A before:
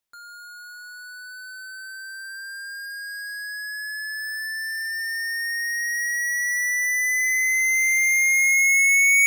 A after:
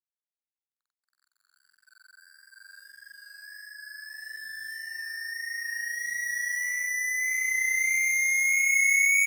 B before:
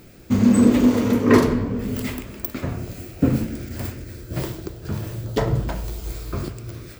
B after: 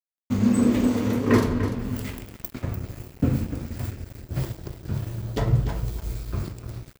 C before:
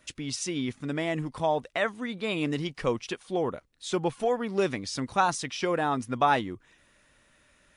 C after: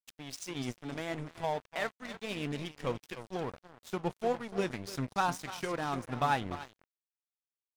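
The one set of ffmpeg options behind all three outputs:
-af "asubboost=boost=2:cutoff=200,aecho=1:1:295|590|885:0.282|0.0592|0.0124,flanger=delay=7.1:depth=4.5:regen=76:speed=1.6:shape=triangular,aeval=exprs='sgn(val(0))*max(abs(val(0))-0.0106,0)':c=same"

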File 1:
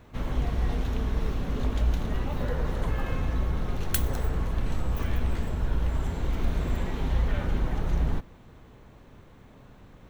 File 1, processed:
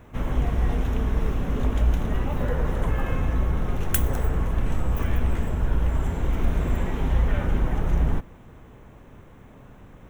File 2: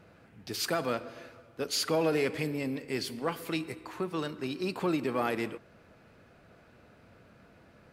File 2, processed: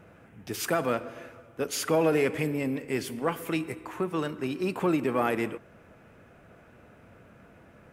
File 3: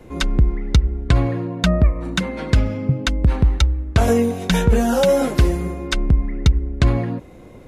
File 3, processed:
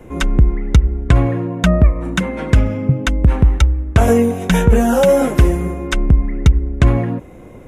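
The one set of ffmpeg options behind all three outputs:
-af "equalizer=f=4400:t=o:w=0.55:g=-12,volume=1.58"

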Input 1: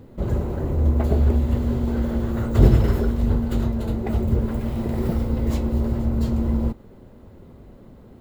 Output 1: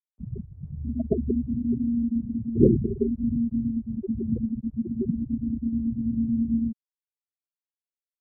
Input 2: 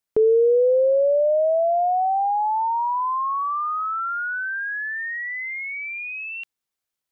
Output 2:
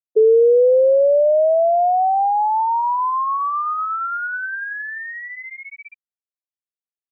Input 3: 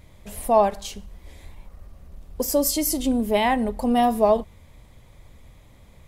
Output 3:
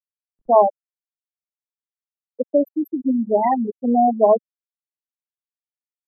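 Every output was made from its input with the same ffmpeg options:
-filter_complex "[0:a]afftfilt=real='re*gte(hypot(re,im),0.398)':imag='im*gte(hypot(re,im),0.398)':win_size=1024:overlap=0.75,acrossover=split=170 2000:gain=0.0708 1 0.178[s0][s1][s2];[s0][s1][s2]amix=inputs=3:normalize=0,volume=1.68"

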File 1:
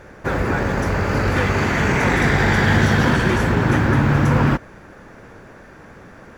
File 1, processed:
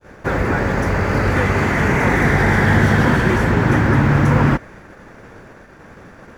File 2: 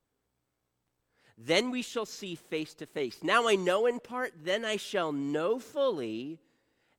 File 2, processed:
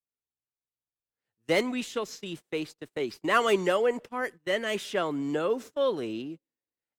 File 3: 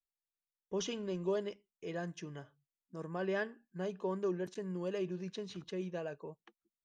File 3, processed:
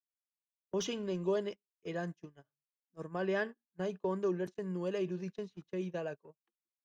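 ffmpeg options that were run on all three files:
-filter_complex "[0:a]agate=range=0.0447:threshold=0.00794:ratio=16:detection=peak,adynamicequalizer=threshold=0.01:dfrequency=2000:dqfactor=4.3:tfrequency=2000:tqfactor=4.3:attack=5:release=100:ratio=0.375:range=2:mode=boostabove:tftype=bell,acrossover=split=490|1900[s0][s1][s2];[s2]asoftclip=type=tanh:threshold=0.0251[s3];[s0][s1][s3]amix=inputs=3:normalize=0,volume=1.26"

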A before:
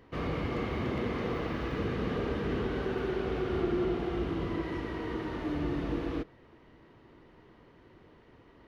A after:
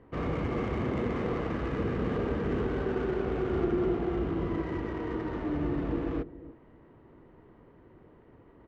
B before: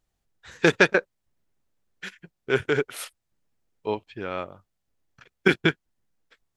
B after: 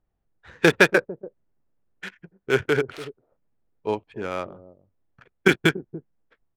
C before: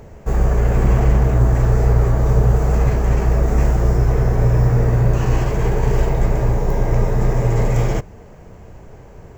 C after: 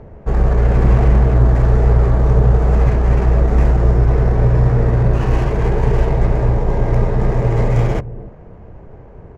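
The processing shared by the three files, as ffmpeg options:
-filter_complex "[0:a]acrossover=split=640[s0][s1];[s0]aecho=1:1:288:0.2[s2];[s1]adynamicsmooth=sensitivity=6:basefreq=1700[s3];[s2][s3]amix=inputs=2:normalize=0,volume=1.26"

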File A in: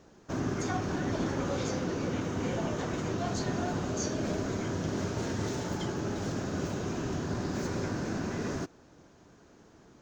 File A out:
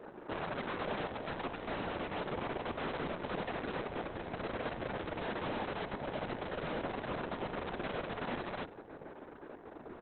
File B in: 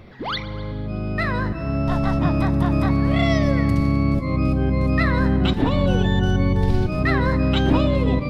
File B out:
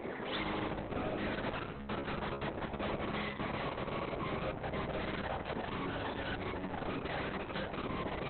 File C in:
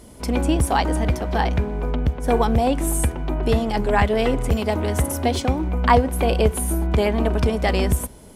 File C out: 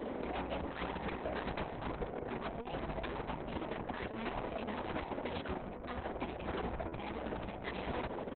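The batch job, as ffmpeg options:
-filter_complex "[0:a]acrossover=split=260 2100:gain=0.0891 1 0.0708[s0][s1][s2];[s0][s1][s2]amix=inputs=3:normalize=0,areverse,acompressor=threshold=0.02:ratio=8,areverse,afftfilt=real='re*lt(hypot(re,im),0.0631)':imag='im*lt(hypot(re,im),0.0631)':win_size=1024:overlap=0.75,asoftclip=type=hard:threshold=0.0126,alimiter=level_in=7.08:limit=0.0631:level=0:latency=1:release=95,volume=0.141,bandreject=f=101.5:t=h:w=4,bandreject=f=203:t=h:w=4,bandreject=f=304.5:t=h:w=4,bandreject=f=406:t=h:w=4,aeval=exprs='0.0119*sin(PI/2*1.78*val(0)/0.0119)':c=same,aecho=1:1:96|192|288|384:0.0841|0.0446|0.0236|0.0125,adynamicequalizer=threshold=0.00126:dfrequency=1300:dqfactor=0.88:tfrequency=1300:tqfactor=0.88:attack=5:release=100:ratio=0.375:range=2:mode=cutabove:tftype=bell,volume=1.88" -ar 48000 -c:a libopus -b:a 6k

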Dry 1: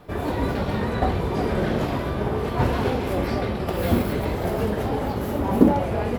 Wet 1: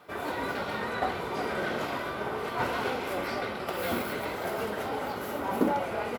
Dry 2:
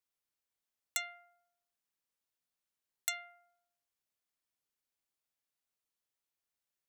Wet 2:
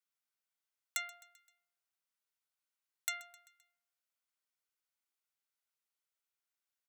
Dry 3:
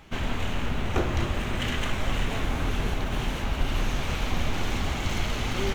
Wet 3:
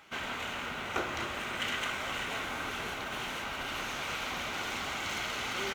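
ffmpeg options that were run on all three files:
-af "highpass=f=700:p=1,equalizer=f=1600:t=o:w=0.54:g=8.5,bandreject=f=1700:w=5.8,aecho=1:1:130|260|390|520:0.1|0.056|0.0314|0.0176,volume=0.75"

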